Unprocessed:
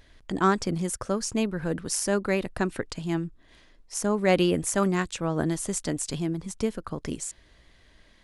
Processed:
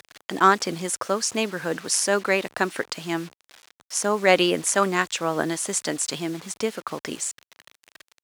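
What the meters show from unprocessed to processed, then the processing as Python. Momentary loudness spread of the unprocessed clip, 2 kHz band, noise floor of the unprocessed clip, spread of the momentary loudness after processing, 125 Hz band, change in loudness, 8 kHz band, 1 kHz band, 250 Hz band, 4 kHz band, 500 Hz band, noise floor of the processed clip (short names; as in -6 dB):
11 LU, +8.0 dB, -58 dBFS, 12 LU, -5.5 dB, +4.0 dB, +6.0 dB, +7.0 dB, -1.5 dB, +8.0 dB, +3.0 dB, under -85 dBFS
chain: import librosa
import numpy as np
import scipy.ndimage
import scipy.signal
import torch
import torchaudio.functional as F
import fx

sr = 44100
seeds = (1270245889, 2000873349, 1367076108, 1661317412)

y = fx.quant_dither(x, sr, seeds[0], bits=8, dither='none')
y = fx.weighting(y, sr, curve='A')
y = F.gain(torch.from_numpy(y), 7.0).numpy()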